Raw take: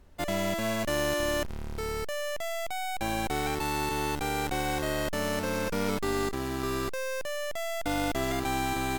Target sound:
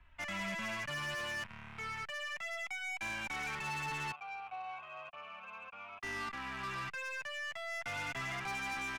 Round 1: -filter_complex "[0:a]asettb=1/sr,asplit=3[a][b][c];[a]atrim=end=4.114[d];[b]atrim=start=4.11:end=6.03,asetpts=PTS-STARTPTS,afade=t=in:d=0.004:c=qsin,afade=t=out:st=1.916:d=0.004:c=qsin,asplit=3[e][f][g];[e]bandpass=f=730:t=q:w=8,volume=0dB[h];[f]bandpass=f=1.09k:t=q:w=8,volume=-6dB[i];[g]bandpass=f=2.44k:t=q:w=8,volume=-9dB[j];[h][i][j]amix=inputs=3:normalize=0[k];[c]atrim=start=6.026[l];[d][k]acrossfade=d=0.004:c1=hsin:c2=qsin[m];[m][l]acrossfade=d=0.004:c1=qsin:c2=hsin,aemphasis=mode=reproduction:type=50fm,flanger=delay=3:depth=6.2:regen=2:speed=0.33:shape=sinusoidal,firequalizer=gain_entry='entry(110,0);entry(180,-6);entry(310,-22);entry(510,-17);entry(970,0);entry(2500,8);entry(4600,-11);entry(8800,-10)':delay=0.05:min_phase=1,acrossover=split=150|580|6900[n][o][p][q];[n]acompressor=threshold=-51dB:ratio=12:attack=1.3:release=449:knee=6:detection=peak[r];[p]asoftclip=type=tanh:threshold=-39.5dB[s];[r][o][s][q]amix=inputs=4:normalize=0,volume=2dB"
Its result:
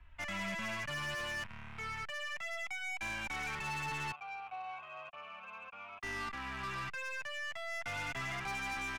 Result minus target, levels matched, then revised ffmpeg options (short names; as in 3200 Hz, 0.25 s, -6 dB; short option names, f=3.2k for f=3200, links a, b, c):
compressor: peak gain reduction -7.5 dB
-filter_complex "[0:a]asettb=1/sr,asplit=3[a][b][c];[a]atrim=end=4.114[d];[b]atrim=start=4.11:end=6.03,asetpts=PTS-STARTPTS,afade=t=in:d=0.004:c=qsin,afade=t=out:st=1.916:d=0.004:c=qsin,asplit=3[e][f][g];[e]bandpass=f=730:t=q:w=8,volume=0dB[h];[f]bandpass=f=1.09k:t=q:w=8,volume=-6dB[i];[g]bandpass=f=2.44k:t=q:w=8,volume=-9dB[j];[h][i][j]amix=inputs=3:normalize=0[k];[c]atrim=start=6.026[l];[d][k]acrossfade=d=0.004:c1=hsin:c2=qsin[m];[m][l]acrossfade=d=0.004:c1=qsin:c2=hsin,aemphasis=mode=reproduction:type=50fm,flanger=delay=3:depth=6.2:regen=2:speed=0.33:shape=sinusoidal,firequalizer=gain_entry='entry(110,0);entry(180,-6);entry(310,-22);entry(510,-17);entry(970,0);entry(2500,8);entry(4600,-11);entry(8800,-10)':delay=0.05:min_phase=1,acrossover=split=150|580|6900[n][o][p][q];[n]acompressor=threshold=-59dB:ratio=12:attack=1.3:release=449:knee=6:detection=peak[r];[p]asoftclip=type=tanh:threshold=-39.5dB[s];[r][o][s][q]amix=inputs=4:normalize=0,volume=2dB"